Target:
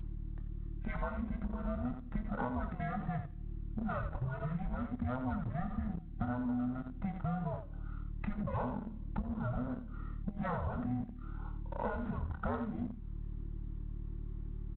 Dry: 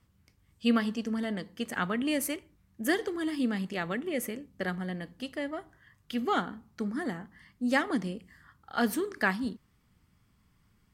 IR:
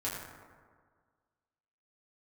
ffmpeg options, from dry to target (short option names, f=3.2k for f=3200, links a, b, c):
-filter_complex "[0:a]afftfilt=real='real(if(between(b,1,1008),(2*floor((b-1)/24)+1)*24-b,b),0)':imag='imag(if(between(b,1,1008),(2*floor((b-1)/24)+1)*24-b,b),0)*if(between(b,1,1008),-1,1)':win_size=2048:overlap=0.75,afftfilt=real='re*lt(hypot(re,im),0.251)':imag='im*lt(hypot(re,im),0.251)':win_size=1024:overlap=0.75,aemphasis=mode=production:type=75kf,asplit=2[a][b];[b]aecho=0:1:18|63:0.376|0.335[c];[a][c]amix=inputs=2:normalize=0,aeval=exprs='val(0)+0.00398*(sin(2*PI*50*n/s)+sin(2*PI*2*50*n/s)/2+sin(2*PI*3*50*n/s)/3+sin(2*PI*4*50*n/s)/4+sin(2*PI*5*50*n/s)/5)':c=same,asplit=2[d][e];[e]acrusher=bits=5:mix=0:aa=0.000001,volume=-3dB[f];[d][f]amix=inputs=2:normalize=0,aeval=exprs='0.501*(abs(mod(val(0)/0.501+3,4)-2)-1)':c=same,lowpass=f=2k:w=0.5412,lowpass=f=2k:w=1.3066,asetrate=32667,aresample=44100,tiltshelf=f=640:g=6,acompressor=threshold=-40dB:ratio=4,volume=4dB" -ar 8000 -c:a adpcm_g726 -b:a 32k